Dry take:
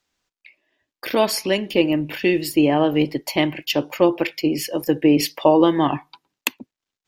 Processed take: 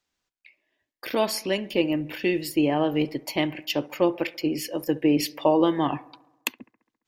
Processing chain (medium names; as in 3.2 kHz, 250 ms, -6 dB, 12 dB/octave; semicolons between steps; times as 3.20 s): bucket-brigade echo 68 ms, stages 1024, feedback 63%, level -22 dB; trim -5.5 dB